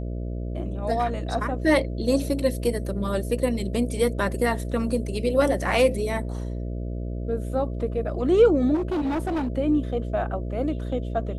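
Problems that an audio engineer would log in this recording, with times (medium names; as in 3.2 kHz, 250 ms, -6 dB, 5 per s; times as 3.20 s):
buzz 60 Hz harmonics 11 -30 dBFS
8.74–9.48 s: clipped -22.5 dBFS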